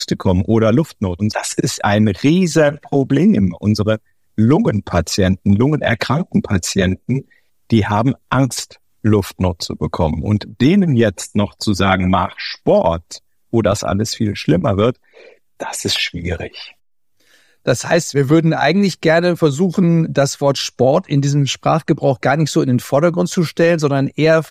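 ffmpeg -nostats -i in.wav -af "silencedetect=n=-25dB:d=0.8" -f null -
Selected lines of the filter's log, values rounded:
silence_start: 16.65
silence_end: 17.67 | silence_duration: 1.02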